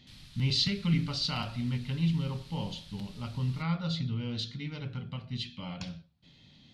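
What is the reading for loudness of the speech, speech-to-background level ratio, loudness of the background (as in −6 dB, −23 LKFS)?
−33.0 LKFS, 19.5 dB, −52.5 LKFS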